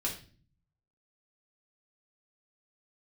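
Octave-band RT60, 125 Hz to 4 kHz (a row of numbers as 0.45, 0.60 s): 1.0, 0.80, 0.45, 0.35, 0.40, 0.40 s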